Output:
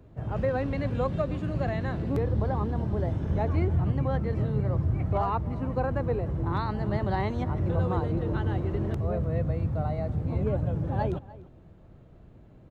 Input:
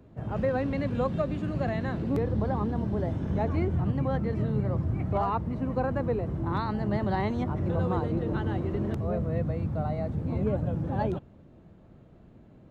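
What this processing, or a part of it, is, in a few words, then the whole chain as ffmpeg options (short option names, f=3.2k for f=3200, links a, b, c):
low shelf boost with a cut just above: -filter_complex "[0:a]lowshelf=f=96:g=6.5,equalizer=f=220:t=o:w=0.7:g=-5,asplit=2[a][b];[b]adelay=297.4,volume=-19dB,highshelf=f=4k:g=-6.69[c];[a][c]amix=inputs=2:normalize=0"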